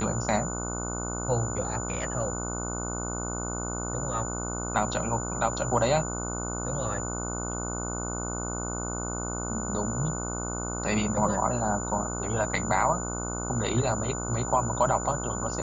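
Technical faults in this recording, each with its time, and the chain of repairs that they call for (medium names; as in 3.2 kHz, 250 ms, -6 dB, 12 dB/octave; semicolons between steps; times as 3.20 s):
buzz 60 Hz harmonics 25 -34 dBFS
whine 7 kHz -35 dBFS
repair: band-stop 7 kHz, Q 30; de-hum 60 Hz, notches 25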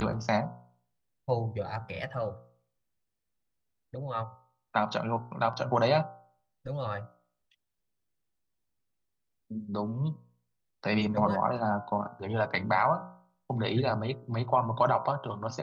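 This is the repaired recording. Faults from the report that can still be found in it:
nothing left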